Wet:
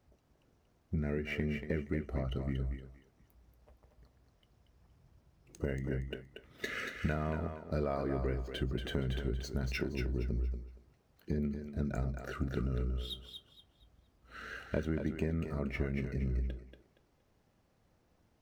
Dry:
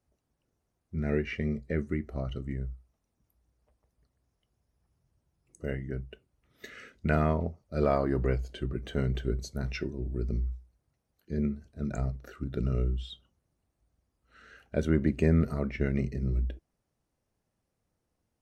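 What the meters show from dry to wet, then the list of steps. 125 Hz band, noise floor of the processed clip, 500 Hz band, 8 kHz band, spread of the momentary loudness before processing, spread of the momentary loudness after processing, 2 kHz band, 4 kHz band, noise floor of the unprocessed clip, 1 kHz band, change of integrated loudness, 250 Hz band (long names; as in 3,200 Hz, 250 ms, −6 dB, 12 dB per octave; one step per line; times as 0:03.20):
−5.0 dB, −72 dBFS, −6.0 dB, can't be measured, 13 LU, 10 LU, −1.5 dB, +1.5 dB, −81 dBFS, −6.5 dB, −5.5 dB, −5.5 dB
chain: running median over 5 samples
downward compressor 6 to 1, threshold −41 dBFS, peak gain reduction 21 dB
feedback echo with a high-pass in the loop 234 ms, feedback 28%, high-pass 350 Hz, level −6 dB
level +9 dB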